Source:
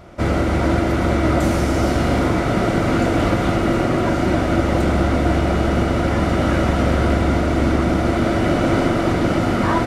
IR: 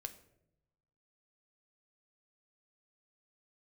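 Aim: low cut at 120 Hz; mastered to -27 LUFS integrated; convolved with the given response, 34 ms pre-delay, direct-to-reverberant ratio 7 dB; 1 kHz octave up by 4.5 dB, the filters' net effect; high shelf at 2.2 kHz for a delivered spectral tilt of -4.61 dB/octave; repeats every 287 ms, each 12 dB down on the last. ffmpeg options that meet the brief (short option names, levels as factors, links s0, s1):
-filter_complex "[0:a]highpass=120,equalizer=f=1000:t=o:g=5,highshelf=f=2200:g=6,aecho=1:1:287|574|861:0.251|0.0628|0.0157,asplit=2[s0][s1];[1:a]atrim=start_sample=2205,adelay=34[s2];[s1][s2]afir=irnorm=-1:irlink=0,volume=0.668[s3];[s0][s3]amix=inputs=2:normalize=0,volume=0.299"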